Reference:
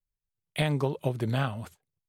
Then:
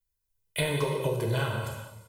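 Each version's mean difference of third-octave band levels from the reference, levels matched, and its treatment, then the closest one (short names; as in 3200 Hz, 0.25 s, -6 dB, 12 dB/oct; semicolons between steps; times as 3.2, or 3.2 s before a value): 9.0 dB: high shelf 7800 Hz +9 dB; comb 2 ms, depth 71%; compressor, threshold -25 dBFS, peak gain reduction 6 dB; non-linear reverb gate 0.48 s falling, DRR 0 dB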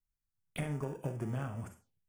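5.5 dB: in parallel at -7.5 dB: sample-and-hold 42×; on the sum: compressor, threshold -31 dBFS, peak gain reduction 11 dB; Schroeder reverb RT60 0.31 s, combs from 33 ms, DRR 8 dB; envelope phaser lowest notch 520 Hz, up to 4000 Hz, full sweep at -41 dBFS; gain -2.5 dB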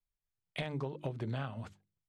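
4.0 dB: notches 50/100/150/200/250/300/350 Hz; compressor 5:1, threshold -31 dBFS, peak gain reduction 8.5 dB; overloaded stage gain 23 dB; air absorption 91 m; gain -2.5 dB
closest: third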